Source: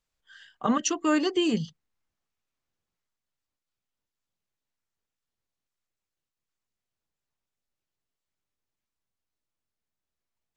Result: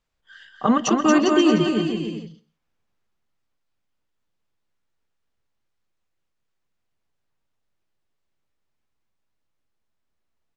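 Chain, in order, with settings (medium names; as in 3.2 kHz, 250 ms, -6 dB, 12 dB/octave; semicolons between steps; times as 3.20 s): low-pass 2.9 kHz 6 dB/octave; bouncing-ball echo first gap 230 ms, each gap 0.75×, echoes 5; on a send at -20 dB: reverberation RT60 0.35 s, pre-delay 123 ms; on the sum: trim +6.5 dB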